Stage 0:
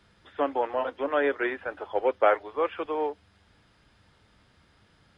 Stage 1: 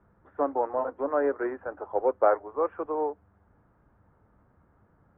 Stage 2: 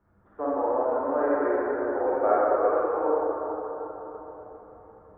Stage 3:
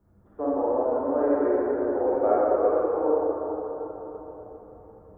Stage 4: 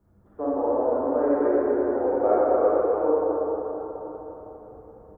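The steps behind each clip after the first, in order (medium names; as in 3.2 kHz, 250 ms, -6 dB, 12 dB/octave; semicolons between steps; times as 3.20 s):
low-pass 1.3 kHz 24 dB/octave
reverberation RT60 4.3 s, pre-delay 27 ms, DRR -8.5 dB; trim -6.5 dB
peaking EQ 1.6 kHz -12.5 dB 2.3 oct; trim +5.5 dB
delay 246 ms -6 dB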